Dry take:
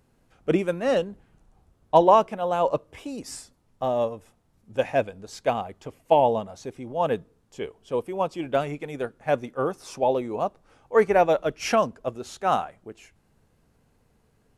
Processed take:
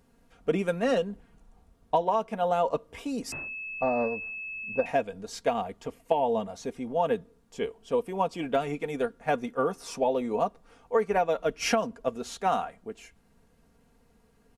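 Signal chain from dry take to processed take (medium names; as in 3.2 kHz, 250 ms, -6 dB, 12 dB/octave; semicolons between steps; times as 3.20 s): comb 4.3 ms, depth 56%; compression 12:1, threshold -21 dBFS, peak gain reduction 13 dB; 3.32–4.86 s: class-D stage that switches slowly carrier 2.6 kHz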